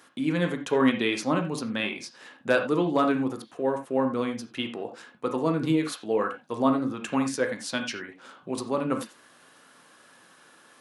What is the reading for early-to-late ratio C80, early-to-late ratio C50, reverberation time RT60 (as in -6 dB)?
14.0 dB, 8.5 dB, no single decay rate